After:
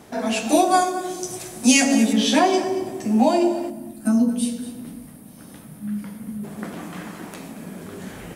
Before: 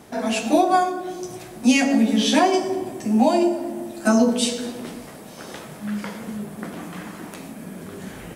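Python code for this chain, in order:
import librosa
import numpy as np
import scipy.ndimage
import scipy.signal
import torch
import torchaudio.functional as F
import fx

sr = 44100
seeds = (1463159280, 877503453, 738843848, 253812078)

p1 = fx.peak_eq(x, sr, hz=8800.0, db=12.0, octaves=1.6, at=(0.49, 2.13))
p2 = fx.spec_box(p1, sr, start_s=3.7, length_s=2.74, low_hz=320.0, high_hz=8500.0, gain_db=-12)
y = p2 + fx.echo_single(p2, sr, ms=228, db=-15.0, dry=0)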